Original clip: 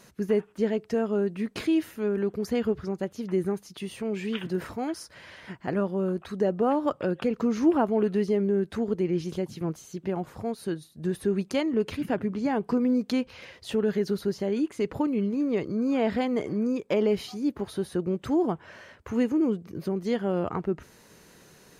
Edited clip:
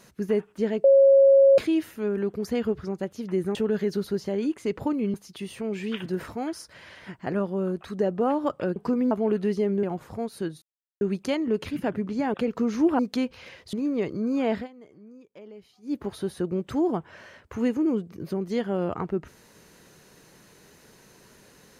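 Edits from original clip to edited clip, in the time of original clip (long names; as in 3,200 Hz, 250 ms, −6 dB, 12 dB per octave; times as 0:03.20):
0:00.84–0:01.58: beep over 547 Hz −12 dBFS
0:07.17–0:07.82: swap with 0:12.60–0:12.95
0:08.54–0:10.09: remove
0:10.88–0:11.27: silence
0:13.69–0:15.28: move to 0:03.55
0:16.09–0:17.51: duck −21.5 dB, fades 0.14 s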